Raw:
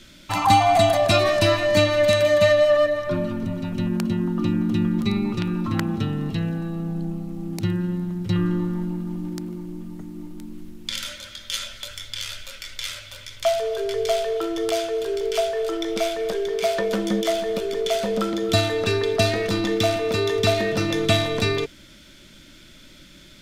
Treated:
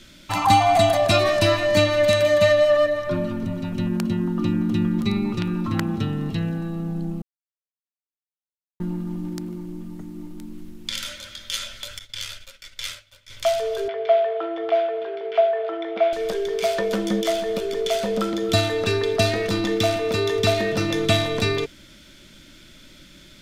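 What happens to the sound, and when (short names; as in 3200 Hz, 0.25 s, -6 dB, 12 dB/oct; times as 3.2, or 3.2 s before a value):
7.22–8.8 mute
11.99–13.3 expander -31 dBFS
13.88–16.13 speaker cabinet 320–2800 Hz, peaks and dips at 400 Hz -7 dB, 710 Hz +8 dB, 2700 Hz -3 dB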